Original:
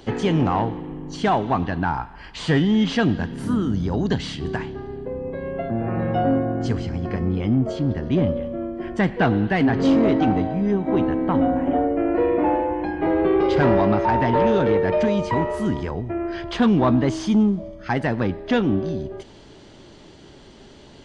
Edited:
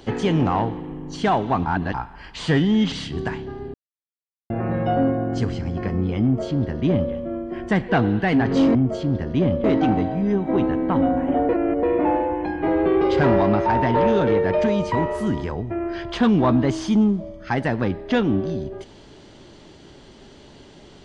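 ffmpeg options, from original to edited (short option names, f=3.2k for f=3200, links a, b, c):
-filter_complex "[0:a]asplit=10[a][b][c][d][e][f][g][h][i][j];[a]atrim=end=1.662[k];[b]atrim=start=1.658:end=1.942,asetpts=PTS-STARTPTS,areverse[l];[c]atrim=start=1.938:end=2.922[m];[d]atrim=start=4.198:end=5.02,asetpts=PTS-STARTPTS,afade=t=out:st=0.818:d=0.004:c=hsin[n];[e]atrim=start=5.02:end=5.78,asetpts=PTS-STARTPTS,volume=0[o];[f]atrim=start=5.78:end=10.032,asetpts=PTS-STARTPTS,afade=t=in:d=0.004:c=hsin[p];[g]atrim=start=7.508:end=8.402[q];[h]atrim=start=10.028:end=11.882[r];[i]atrim=start=11.878:end=12.222,asetpts=PTS-STARTPTS,areverse[s];[j]atrim=start=12.218[t];[k][l]acrossfade=d=0.004:c1=hsin:c2=hsin[u];[u][m]acrossfade=d=0.004:c1=hsin:c2=hsin[v];[n][o][p]concat=n=3:v=0:a=1[w];[v][w]acrossfade=d=0.004:c1=hsin:c2=hsin[x];[x][q]acrossfade=d=0.004:c1=hsin:c2=hsin[y];[y][r]acrossfade=d=0.004:c1=hsin:c2=hsin[z];[z][s]acrossfade=d=0.004:c1=hsin:c2=hsin[aa];[aa][t]acrossfade=d=0.004:c1=hsin:c2=hsin"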